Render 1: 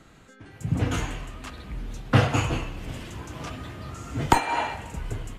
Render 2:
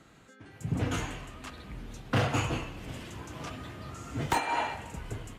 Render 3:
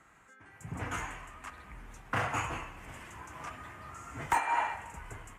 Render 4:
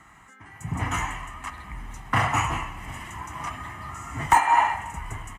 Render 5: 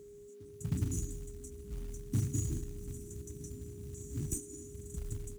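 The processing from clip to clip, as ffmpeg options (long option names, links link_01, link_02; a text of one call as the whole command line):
ffmpeg -i in.wav -af "asoftclip=type=hard:threshold=-17dB,highpass=frequency=79:poles=1,volume=-3.5dB" out.wav
ffmpeg -i in.wav -af "equalizer=frequency=125:width_type=o:width=1:gain=-5,equalizer=frequency=250:width_type=o:width=1:gain=-5,equalizer=frequency=500:width_type=o:width=1:gain=-4,equalizer=frequency=1000:width_type=o:width=1:gain=7,equalizer=frequency=2000:width_type=o:width=1:gain=7,equalizer=frequency=4000:width_type=o:width=1:gain=-11,equalizer=frequency=8000:width_type=o:width=1:gain=5,volume=-5dB" out.wav
ffmpeg -i in.wav -af "aecho=1:1:1:0.57,volume=8dB" out.wav
ffmpeg -i in.wav -af "afftfilt=real='re*(1-between(b*sr/4096,370,5400))':imag='im*(1-between(b*sr/4096,370,5400))':win_size=4096:overlap=0.75,aeval=exprs='val(0)+0.00501*sin(2*PI*410*n/s)':channel_layout=same,acrusher=bits=5:mode=log:mix=0:aa=0.000001,volume=-4dB" out.wav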